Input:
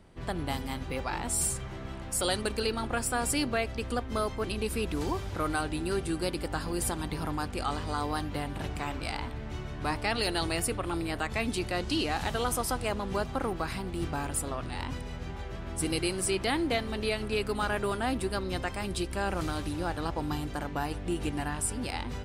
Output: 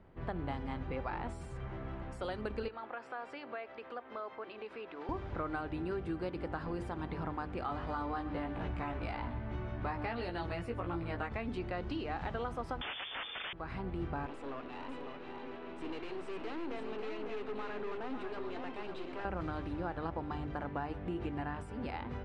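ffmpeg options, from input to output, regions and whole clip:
-filter_complex "[0:a]asettb=1/sr,asplit=3[a][b][c];[a]atrim=end=2.684[d];[b]atrim=start=2.68:end=5.09,asetpts=PTS-STARTPTS,afade=t=in:d=0.004:c=qsin,afade=t=out:st=2.406:d=0.004:c=qsin,highpass=520,lowpass=4.5k,acompressor=threshold=-40dB:ratio=2:attack=3.2:release=140:knee=1:detection=peak[e];[c]atrim=start=5.086[f];[d][e]acrossfade=d=0.004:c1=hsin:c2=qsin[g];[g][f]acrossfade=d=0.004:c1=qsin:c2=hsin,asettb=1/sr,asplit=3[h][i][j];[h]atrim=end=7.674[k];[i]atrim=start=7.67:end=11.32,asetpts=PTS-STARTPTS,afade=t=in:d=0.004:c=qsin,afade=t=out:st=3.646:d=0.004:c=qsin,asplit=2[l][m];[m]adelay=17,volume=-3dB[n];[l][n]amix=inputs=2:normalize=0,atrim=end_sample=160965,aecho=1:1:128:0.15,atrim=end_sample=160965[o];[j]atrim=start=11.316[p];[k][o]acrossfade=d=0.004:c1=hsin:c2=qsin[q];[q][p]acrossfade=d=0.004:c1=qsin:c2=hsin,asettb=1/sr,asplit=3[r][s][t];[r]atrim=end=12.814[u];[s]atrim=start=12.81:end=13.53,asetpts=PTS-STARTPTS,afade=t=in:d=0.004:c=qsin,afade=t=out:st=0.716:d=0.004:c=qsin,aeval=exprs='0.141*sin(PI/2*6.31*val(0)/0.141)':c=same,lowpass=f=3.1k:t=q:w=0.5098,lowpass=f=3.1k:t=q:w=0.6013,lowpass=f=3.1k:t=q:w=0.9,lowpass=f=3.1k:t=q:w=2.563,afreqshift=-3600[v];[t]atrim=start=13.526[w];[u][v]acrossfade=d=0.004:c1=hsin:c2=qsin[x];[x][w]acrossfade=d=0.004:c1=qsin:c2=hsin,asettb=1/sr,asplit=3[y][z][aa];[y]atrim=end=14.264[ab];[z]atrim=start=14.26:end=19.25,asetpts=PTS-STARTPTS,afade=t=in:d=0.004:c=qsin,afade=t=out:st=4.986:d=0.004:c=qsin,highpass=f=230:w=0.5412,highpass=f=230:w=1.3066,equalizer=f=260:t=q:w=4:g=7,equalizer=f=440:t=q:w=4:g=7,equalizer=f=980:t=q:w=4:g=4,equalizer=f=2.7k:t=q:w=4:g=9,equalizer=f=3.9k:t=q:w=4:g=7,equalizer=f=8.3k:t=q:w=4:g=3,lowpass=f=8.8k:w=0.5412,lowpass=f=8.8k:w=1.3066,aeval=exprs='(tanh(63.1*val(0)+0.7)-tanh(0.7))/63.1':c=same,aecho=1:1:550:0.501,atrim=end_sample=220059[ac];[aa]atrim=start=19.246[ad];[ab][ac]acrossfade=d=0.004:c1=hsin:c2=qsin[ae];[ae][ad]acrossfade=d=0.004:c1=qsin:c2=hsin,bandreject=f=50:t=h:w=6,bandreject=f=100:t=h:w=6,bandreject=f=150:t=h:w=6,bandreject=f=200:t=h:w=6,bandreject=f=250:t=h:w=6,bandreject=f=300:t=h:w=6,bandreject=f=350:t=h:w=6,acompressor=threshold=-31dB:ratio=6,lowpass=1.9k,volume=-2dB"

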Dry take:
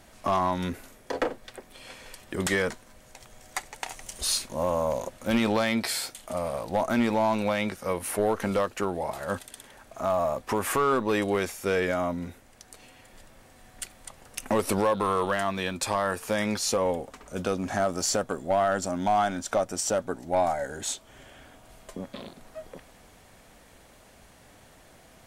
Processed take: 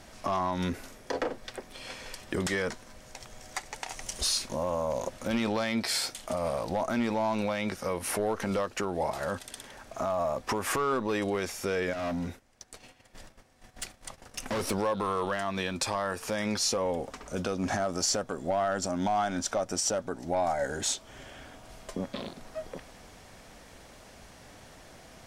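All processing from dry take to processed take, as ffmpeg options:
-filter_complex "[0:a]asettb=1/sr,asplit=3[a][b][c];[a]atrim=end=11.934[d];[b]atrim=start=11.93:end=14.71,asetpts=PTS-STARTPTS,afade=t=in:d=0.004:c=qsin,afade=t=out:st=2.776:d=0.004:c=qsin,asoftclip=type=hard:threshold=-31.5dB,agate=range=-13dB:threshold=-52dB:ratio=16:release=100:detection=peak[e];[c]atrim=start=14.706[f];[d][e]acrossfade=d=0.004:c1=hsin:c2=qsin[g];[g][f]acrossfade=d=0.004:c1=qsin:c2=hsin,highshelf=f=11k:g=-8.5,alimiter=limit=-23dB:level=0:latency=1:release=160,equalizer=f=5.4k:t=o:w=0.5:g=5,volume=3dB"

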